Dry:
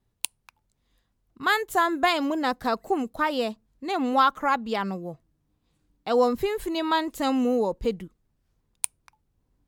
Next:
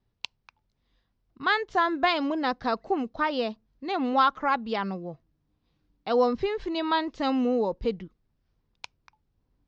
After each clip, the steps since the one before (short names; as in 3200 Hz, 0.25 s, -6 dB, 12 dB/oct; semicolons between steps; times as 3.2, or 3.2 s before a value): steep low-pass 5700 Hz 48 dB/oct; gain -1.5 dB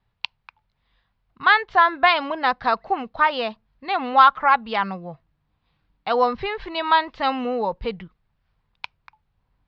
EQ curve 170 Hz 0 dB, 300 Hz -9 dB, 880 Hz +6 dB, 2400 Hz +6 dB, 4400 Hz +1 dB, 6800 Hz -14 dB; gain +3 dB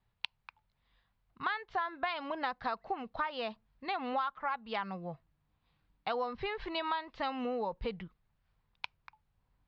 compressor 6:1, threshold -26 dBFS, peak gain reduction 16.5 dB; gain -6 dB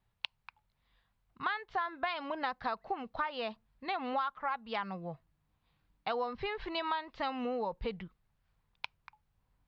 wow and flutter 23 cents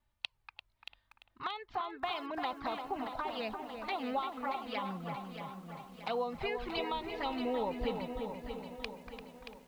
envelope flanger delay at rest 3.4 ms, full sweep at -31 dBFS; darkening echo 0.343 s, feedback 51%, low-pass 1700 Hz, level -6 dB; lo-fi delay 0.628 s, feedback 55%, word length 10-bit, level -8.5 dB; gain +2 dB